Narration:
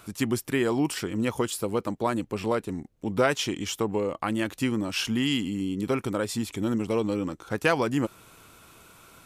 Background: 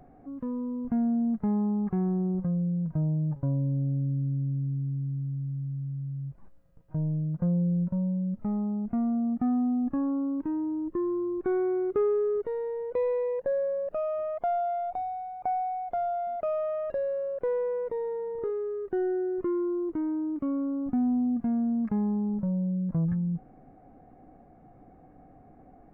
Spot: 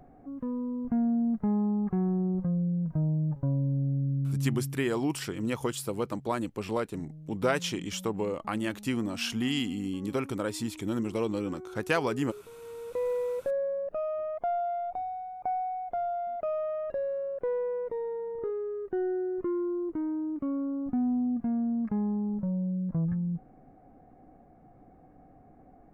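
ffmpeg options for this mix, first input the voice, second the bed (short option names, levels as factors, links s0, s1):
-filter_complex "[0:a]adelay=4250,volume=0.631[s0];[1:a]volume=5.31,afade=t=out:st=4.48:d=0.38:silence=0.149624,afade=t=in:st=12.57:d=0.54:silence=0.177828[s1];[s0][s1]amix=inputs=2:normalize=0"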